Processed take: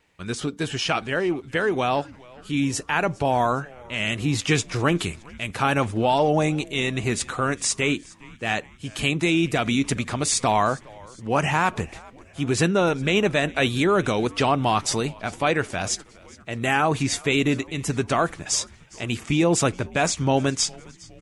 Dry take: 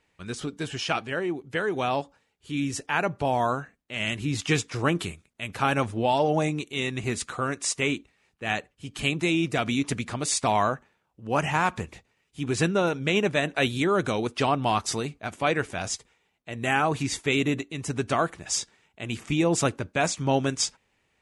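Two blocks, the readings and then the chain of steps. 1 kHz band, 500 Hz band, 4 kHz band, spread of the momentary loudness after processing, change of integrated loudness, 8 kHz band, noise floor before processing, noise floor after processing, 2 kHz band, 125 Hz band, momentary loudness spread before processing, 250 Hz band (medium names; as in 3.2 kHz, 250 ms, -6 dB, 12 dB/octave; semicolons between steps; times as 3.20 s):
+3.0 dB, +3.5 dB, +3.5 dB, 9 LU, +3.5 dB, +4.0 dB, -72 dBFS, -48 dBFS, +3.0 dB, +4.0 dB, 11 LU, +4.0 dB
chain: in parallel at -2 dB: peak limiter -19.5 dBFS, peak gain reduction 9.5 dB; on the sum: wow and flutter 20 cents; frequency-shifting echo 410 ms, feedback 60%, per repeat -120 Hz, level -23.5 dB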